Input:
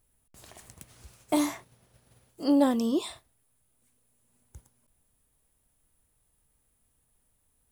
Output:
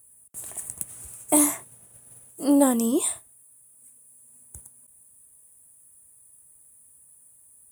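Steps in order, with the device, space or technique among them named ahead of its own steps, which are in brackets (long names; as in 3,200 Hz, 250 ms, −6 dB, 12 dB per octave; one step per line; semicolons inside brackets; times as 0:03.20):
budget condenser microphone (high-pass filter 75 Hz; high shelf with overshoot 6,700 Hz +11.5 dB, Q 3)
level +3.5 dB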